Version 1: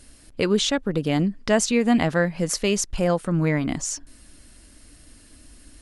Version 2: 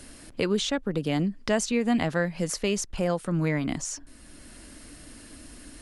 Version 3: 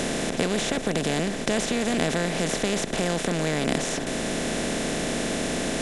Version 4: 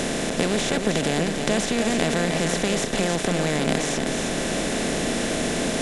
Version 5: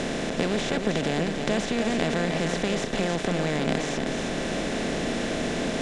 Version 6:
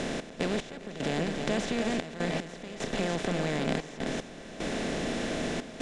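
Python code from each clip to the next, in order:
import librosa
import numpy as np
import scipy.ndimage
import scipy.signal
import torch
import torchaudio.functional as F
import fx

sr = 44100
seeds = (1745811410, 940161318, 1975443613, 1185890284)

y1 = fx.band_squash(x, sr, depth_pct=40)
y1 = F.gain(torch.from_numpy(y1), -4.5).numpy()
y2 = fx.bin_compress(y1, sr, power=0.2)
y2 = F.gain(torch.from_numpy(y2), -6.0).numpy()
y3 = y2 + 10.0 ** (-6.0 / 20.0) * np.pad(y2, (int(311 * sr / 1000.0), 0))[:len(y2)]
y3 = F.gain(torch.from_numpy(y3), 1.5).numpy()
y4 = fx.air_absorb(y3, sr, metres=79.0)
y4 = F.gain(torch.from_numpy(y4), -2.5).numpy()
y5 = fx.step_gate(y4, sr, bpm=75, pattern='x.x..xxxx', floor_db=-12.0, edge_ms=4.5)
y5 = y5 + 10.0 ** (-20.5 / 20.0) * np.pad(y5, (int(401 * sr / 1000.0), 0))[:len(y5)]
y5 = F.gain(torch.from_numpy(y5), -4.0).numpy()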